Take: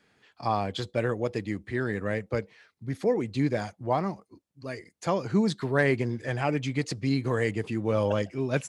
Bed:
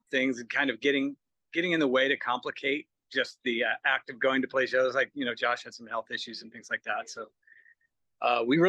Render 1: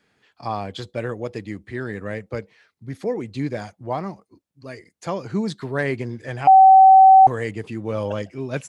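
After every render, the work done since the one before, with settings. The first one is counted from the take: 6.47–7.27 bleep 765 Hz -6 dBFS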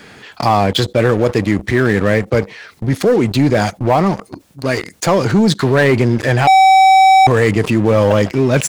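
sample leveller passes 3; fast leveller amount 50%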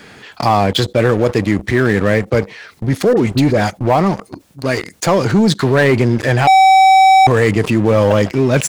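3.13–3.7 dispersion highs, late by 41 ms, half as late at 1300 Hz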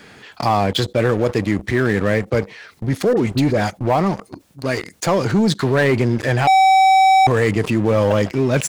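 gain -4 dB

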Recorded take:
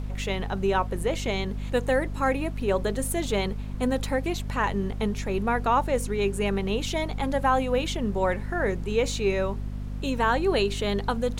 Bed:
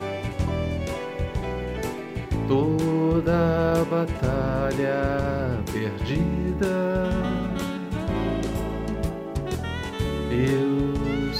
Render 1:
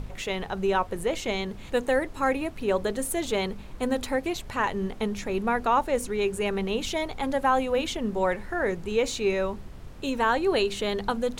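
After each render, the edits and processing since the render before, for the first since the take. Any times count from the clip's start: de-hum 50 Hz, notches 5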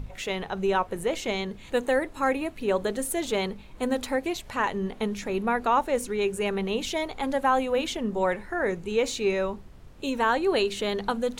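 noise print and reduce 6 dB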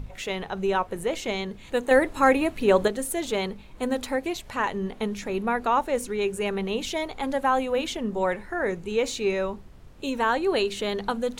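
1.91–2.88 gain +6 dB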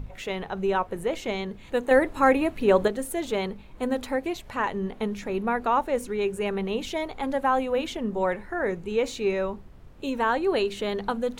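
bell 7300 Hz -6 dB 2.4 oct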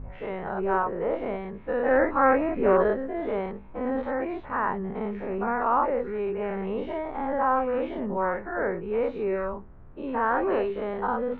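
spectral dilation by 0.12 s; ladder low-pass 1900 Hz, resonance 25%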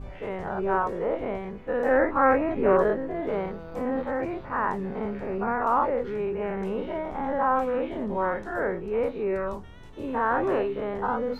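add bed -20.5 dB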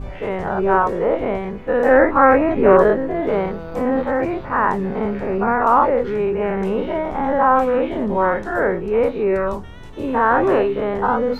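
gain +9 dB; limiter -1 dBFS, peak gain reduction 2 dB

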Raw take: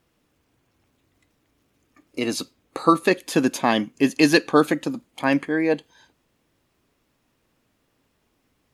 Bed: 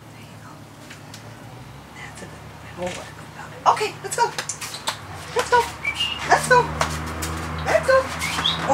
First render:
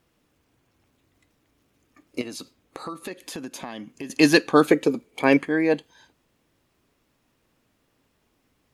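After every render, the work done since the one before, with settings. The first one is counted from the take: 2.21–4.1 compressor 4:1, threshold -34 dBFS; 4.7–5.37 small resonant body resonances 430/2300 Hz, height 17 dB, ringing for 55 ms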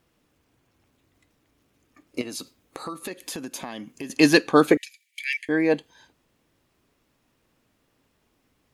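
2.28–4.1 high shelf 6400 Hz +6.5 dB; 4.77–5.49 steep high-pass 1800 Hz 96 dB/oct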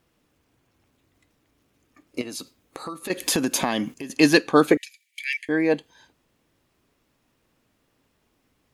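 3.1–3.94 gain +11.5 dB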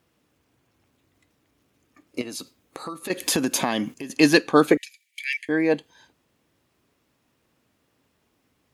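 HPF 59 Hz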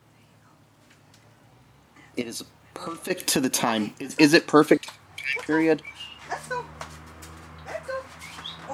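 add bed -16 dB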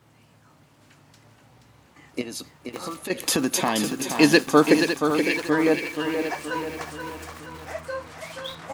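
on a send: feedback echo 0.477 s, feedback 50%, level -7 dB; on the sum: lo-fi delay 0.556 s, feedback 35%, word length 6-bit, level -9.5 dB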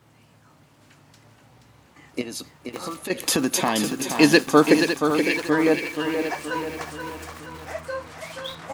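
gain +1 dB

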